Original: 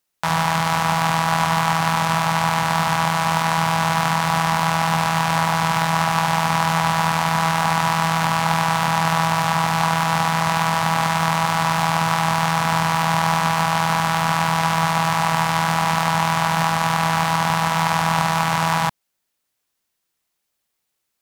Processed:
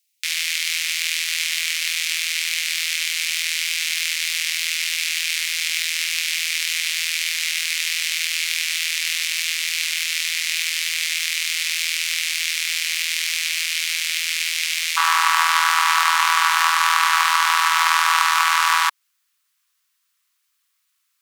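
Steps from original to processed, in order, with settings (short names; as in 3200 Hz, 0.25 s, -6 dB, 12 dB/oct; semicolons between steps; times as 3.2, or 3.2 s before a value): elliptic high-pass 2200 Hz, stop band 70 dB, from 14.96 s 1100 Hz; gain +6.5 dB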